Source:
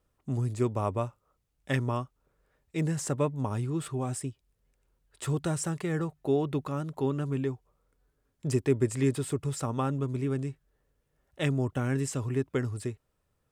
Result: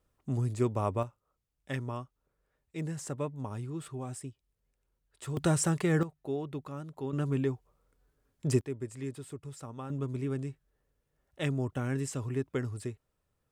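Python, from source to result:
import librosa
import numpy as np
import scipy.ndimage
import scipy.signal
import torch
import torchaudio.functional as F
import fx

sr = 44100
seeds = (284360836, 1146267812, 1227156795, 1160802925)

y = fx.gain(x, sr, db=fx.steps((0.0, -1.0), (1.03, -7.0), (5.37, 3.5), (6.03, -8.0), (7.13, 0.5), (8.61, -12.0), (9.9, -3.5)))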